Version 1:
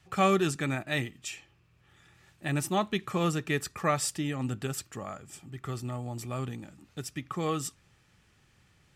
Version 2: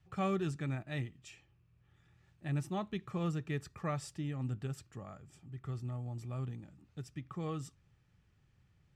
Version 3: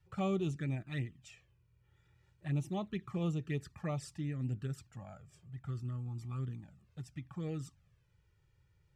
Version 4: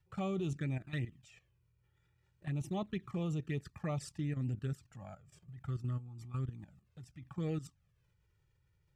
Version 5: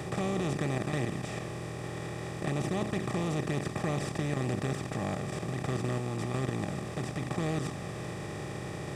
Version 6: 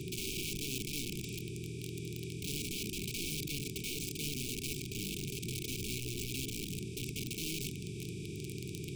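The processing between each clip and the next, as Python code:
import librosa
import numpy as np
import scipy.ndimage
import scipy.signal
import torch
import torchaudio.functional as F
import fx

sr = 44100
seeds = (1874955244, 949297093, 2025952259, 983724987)

y1 = fx.curve_eq(x, sr, hz=(140.0, 230.0, 5800.0, 13000.0), db=(0, -6, -13, -20))
y1 = y1 * 10.0 ** (-2.5 / 20.0)
y2 = fx.env_flanger(y1, sr, rest_ms=2.2, full_db=-31.5)
y2 = y2 * 10.0 ** (1.0 / 20.0)
y3 = fx.level_steps(y2, sr, step_db=13)
y3 = y3 * 10.0 ** (4.0 / 20.0)
y4 = fx.bin_compress(y3, sr, power=0.2)
y5 = (np.mod(10.0 ** (28.5 / 20.0) * y4 + 1.0, 2.0) - 1.0) / 10.0 ** (28.5 / 20.0)
y5 = fx.brickwall_bandstop(y5, sr, low_hz=450.0, high_hz=2200.0)
y5 = y5 * 10.0 ** (-2.5 / 20.0)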